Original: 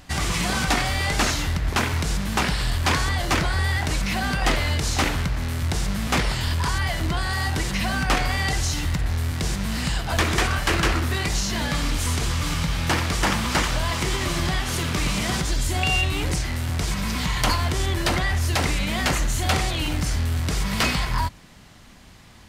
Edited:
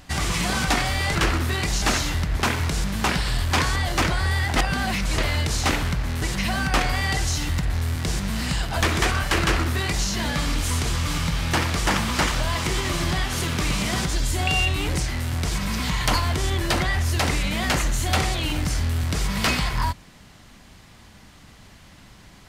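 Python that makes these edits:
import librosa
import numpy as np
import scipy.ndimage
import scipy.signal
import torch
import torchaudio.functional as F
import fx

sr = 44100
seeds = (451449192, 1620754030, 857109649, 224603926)

y = fx.edit(x, sr, fx.reverse_span(start_s=3.89, length_s=0.62),
    fx.cut(start_s=5.55, length_s=2.03),
    fx.duplicate(start_s=10.77, length_s=0.67, to_s=1.15), tone=tone)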